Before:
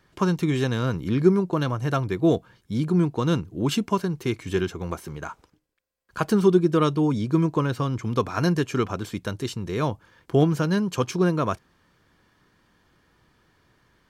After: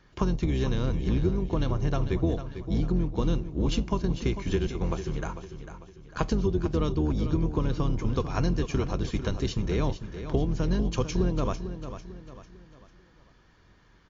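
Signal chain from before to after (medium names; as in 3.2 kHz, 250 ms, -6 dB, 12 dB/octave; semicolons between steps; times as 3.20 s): octave divider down 2 oct, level +3 dB; dynamic bell 1.4 kHz, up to -7 dB, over -43 dBFS, Q 2; compression 8:1, threshold -23 dBFS, peak gain reduction 14 dB; feedback delay 448 ms, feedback 41%, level -10.5 dB; on a send at -18 dB: reverberation, pre-delay 3 ms; on the sum: trim +1 dB; MP3 48 kbps 16 kHz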